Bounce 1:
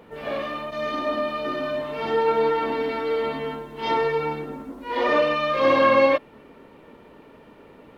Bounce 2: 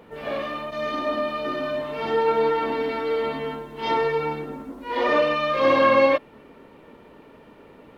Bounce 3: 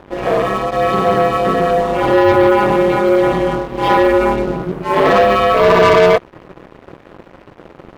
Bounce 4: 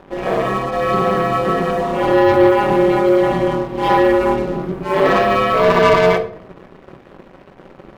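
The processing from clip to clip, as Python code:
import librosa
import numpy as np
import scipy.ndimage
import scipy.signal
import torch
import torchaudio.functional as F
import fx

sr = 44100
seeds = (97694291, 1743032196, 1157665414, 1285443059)

y1 = x
y2 = fx.high_shelf(y1, sr, hz=2100.0, db=-12.0)
y2 = fx.leveller(y2, sr, passes=3)
y2 = y2 * np.sin(2.0 * np.pi * 95.0 * np.arange(len(y2)) / sr)
y2 = y2 * librosa.db_to_amplitude(7.0)
y3 = fx.room_shoebox(y2, sr, seeds[0], volume_m3=880.0, walls='furnished', distance_m=1.1)
y3 = y3 * librosa.db_to_amplitude(-3.5)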